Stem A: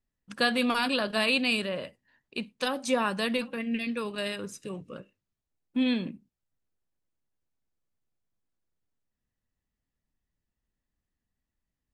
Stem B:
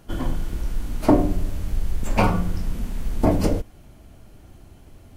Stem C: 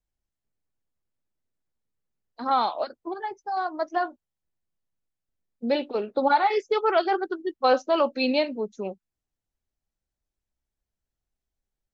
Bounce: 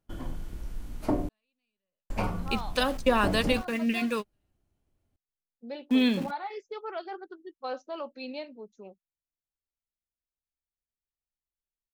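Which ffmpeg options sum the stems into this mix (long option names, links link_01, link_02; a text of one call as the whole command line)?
ffmpeg -i stem1.wav -i stem2.wav -i stem3.wav -filter_complex "[0:a]aeval=exprs='val(0)*gte(abs(val(0)),0.0075)':channel_layout=same,adelay=150,volume=3dB[link_01];[1:a]acrusher=bits=10:mix=0:aa=0.000001,agate=range=-18dB:threshold=-38dB:ratio=16:detection=peak,volume=-11.5dB,asplit=3[link_02][link_03][link_04];[link_02]atrim=end=1.29,asetpts=PTS-STARTPTS,afade=type=out:start_time=1.286:duration=0.004:curve=hsin[link_05];[link_03]atrim=start=1.29:end=2.1,asetpts=PTS-STARTPTS,volume=0[link_06];[link_04]atrim=start=2.1,asetpts=PTS-STARTPTS,afade=type=in:duration=0.004:curve=hsin[link_07];[link_05][link_06][link_07]concat=n=3:v=0:a=1[link_08];[2:a]volume=-15dB,asplit=2[link_09][link_10];[link_10]apad=whole_len=537143[link_11];[link_01][link_11]sidechaingate=range=-60dB:threshold=-59dB:ratio=16:detection=peak[link_12];[link_12][link_08][link_09]amix=inputs=3:normalize=0" out.wav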